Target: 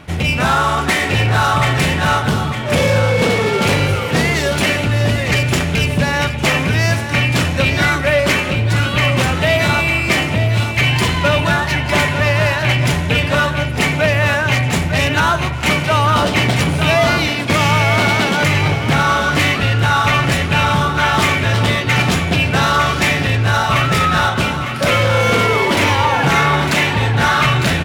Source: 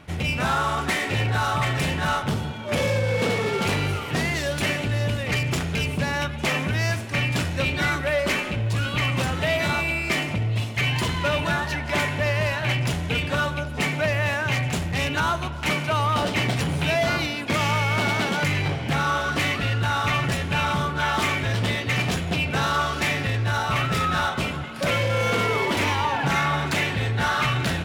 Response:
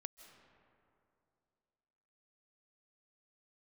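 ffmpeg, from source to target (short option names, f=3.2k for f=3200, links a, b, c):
-af "aecho=1:1:904:0.355,volume=8.5dB"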